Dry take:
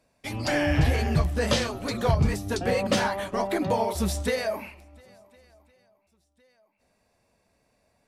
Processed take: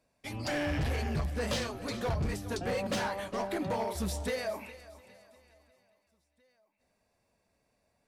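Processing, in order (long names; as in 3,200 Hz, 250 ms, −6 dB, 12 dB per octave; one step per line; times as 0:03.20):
feedback echo with a high-pass in the loop 409 ms, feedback 39%, high-pass 420 Hz, level −16.5 dB
gain into a clipping stage and back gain 21 dB
level −6.5 dB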